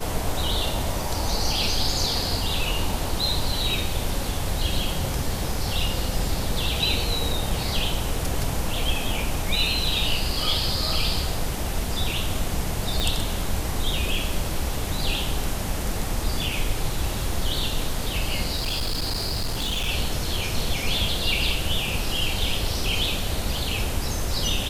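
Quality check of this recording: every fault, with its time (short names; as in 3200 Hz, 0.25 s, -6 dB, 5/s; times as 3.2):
13 pop -10 dBFS
18.56–19.89 clipped -22 dBFS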